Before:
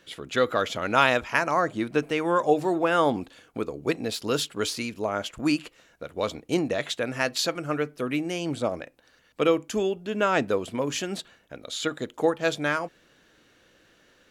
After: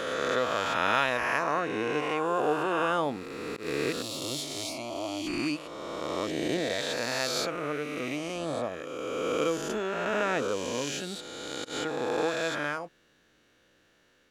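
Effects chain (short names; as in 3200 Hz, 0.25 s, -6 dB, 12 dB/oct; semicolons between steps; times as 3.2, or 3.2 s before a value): spectral swells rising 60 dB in 2.71 s; auto swell 0.116 s; 4.02–5.27 fixed phaser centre 300 Hz, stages 8; gain -9 dB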